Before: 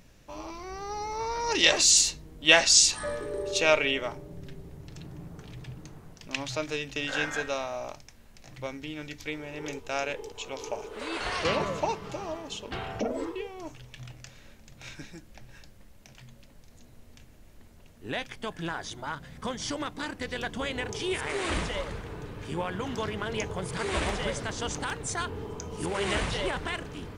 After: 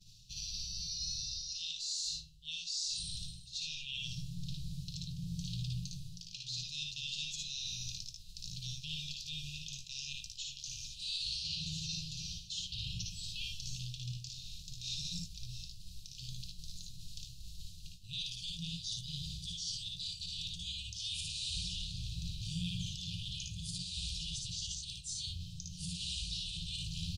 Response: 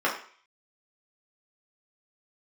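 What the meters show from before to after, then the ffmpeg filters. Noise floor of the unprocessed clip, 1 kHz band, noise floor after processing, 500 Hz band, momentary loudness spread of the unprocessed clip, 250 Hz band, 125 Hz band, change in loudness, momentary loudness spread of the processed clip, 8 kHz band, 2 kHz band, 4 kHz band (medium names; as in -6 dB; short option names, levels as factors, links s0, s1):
-53 dBFS, under -40 dB, -51 dBFS, under -40 dB, 22 LU, -12.0 dB, -2.5 dB, -11.5 dB, 10 LU, -12.5 dB, -21.0 dB, -6.0 dB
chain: -af "aemphasis=mode=reproduction:type=50kf,afftfilt=real='re*(1-between(b*sr/4096,190,2400))':imag='im*(1-between(b*sr/4096,190,2400))':win_size=4096:overlap=0.75,agate=range=0.0224:threshold=0.00398:ratio=3:detection=peak,highshelf=f=3100:t=q:w=3:g=10.5,bandreject=f=93.66:t=h:w=4,bandreject=f=187.32:t=h:w=4,bandreject=f=280.98:t=h:w=4,bandreject=f=374.64:t=h:w=4,bandreject=f=468.3:t=h:w=4,bandreject=f=561.96:t=h:w=4,bandreject=f=655.62:t=h:w=4,bandreject=f=749.28:t=h:w=4,bandreject=f=842.94:t=h:w=4,bandreject=f=936.6:t=h:w=4,bandreject=f=1030.26:t=h:w=4,bandreject=f=1123.92:t=h:w=4,bandreject=f=1217.58:t=h:w=4,bandreject=f=1311.24:t=h:w=4,bandreject=f=1404.9:t=h:w=4,bandreject=f=1498.56:t=h:w=4,bandreject=f=1592.22:t=h:w=4,bandreject=f=1685.88:t=h:w=4,bandreject=f=1779.54:t=h:w=4,bandreject=f=1873.2:t=h:w=4,bandreject=f=1966.86:t=h:w=4,bandreject=f=2060.52:t=h:w=4,bandreject=f=2154.18:t=h:w=4,bandreject=f=2247.84:t=h:w=4,bandreject=f=2341.5:t=h:w=4,bandreject=f=2435.16:t=h:w=4,bandreject=f=2528.82:t=h:w=4,bandreject=f=2622.48:t=h:w=4,bandreject=f=2716.14:t=h:w=4,bandreject=f=2809.8:t=h:w=4,bandreject=f=2903.46:t=h:w=4,bandreject=f=2997.12:t=h:w=4,bandreject=f=3090.78:t=h:w=4,bandreject=f=3184.44:t=h:w=4,bandreject=f=3278.1:t=h:w=4,bandreject=f=3371.76:t=h:w=4,bandreject=f=3465.42:t=h:w=4,areverse,acompressor=threshold=0.00562:ratio=5,areverse,alimiter=level_in=4.22:limit=0.0631:level=0:latency=1:release=366,volume=0.237,flanger=delay=9.2:depth=5:regen=-79:speed=0.14:shape=sinusoidal,aecho=1:1:57|74:0.708|0.501,volume=3.55"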